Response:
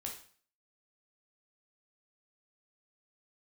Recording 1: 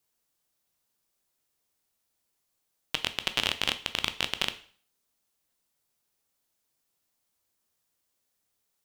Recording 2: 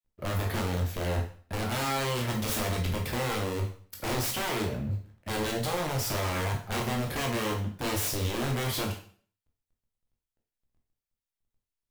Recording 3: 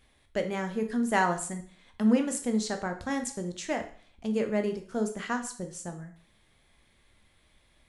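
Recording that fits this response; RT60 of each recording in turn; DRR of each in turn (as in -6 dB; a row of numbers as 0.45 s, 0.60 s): 2; 0.45 s, 0.45 s, 0.45 s; 10.0 dB, 0.0 dB, 5.5 dB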